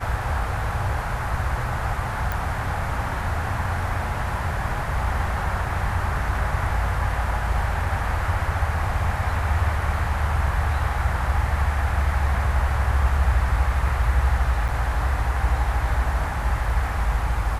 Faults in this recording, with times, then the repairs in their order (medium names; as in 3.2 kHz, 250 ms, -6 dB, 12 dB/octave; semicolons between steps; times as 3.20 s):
2.32 s: pop
14.68–14.69 s: dropout 6.5 ms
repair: de-click; interpolate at 14.68 s, 6.5 ms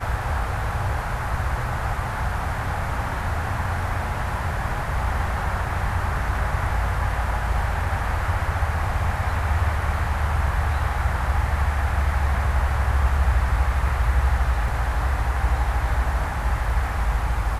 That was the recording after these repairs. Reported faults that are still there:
nothing left